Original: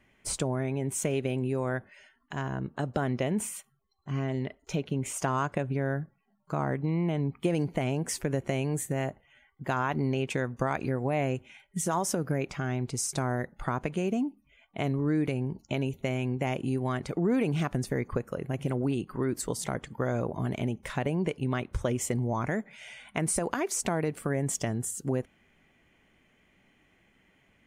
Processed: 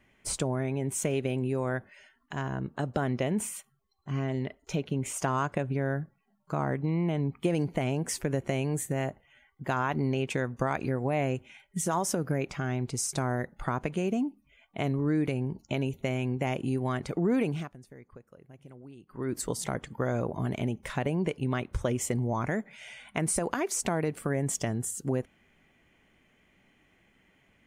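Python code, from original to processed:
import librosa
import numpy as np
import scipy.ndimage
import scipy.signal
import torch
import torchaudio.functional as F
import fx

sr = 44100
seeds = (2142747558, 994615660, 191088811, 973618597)

y = fx.edit(x, sr, fx.fade_down_up(start_s=17.42, length_s=1.95, db=-19.5, fade_s=0.31), tone=tone)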